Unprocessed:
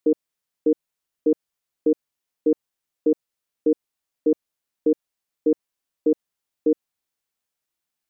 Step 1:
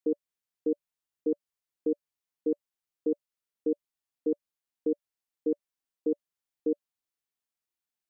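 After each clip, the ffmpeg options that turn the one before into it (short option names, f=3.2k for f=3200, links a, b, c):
-af "bandreject=f=580:w=17,volume=-8.5dB"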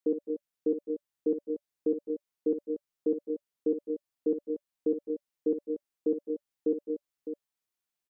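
-af "aecho=1:1:57|209|218|235|607:0.316|0.126|0.237|0.316|0.335"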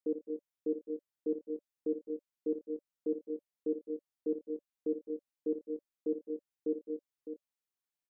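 -filter_complex "[0:a]asplit=2[a][b];[b]adelay=26,volume=-10dB[c];[a][c]amix=inputs=2:normalize=0,volume=-7dB"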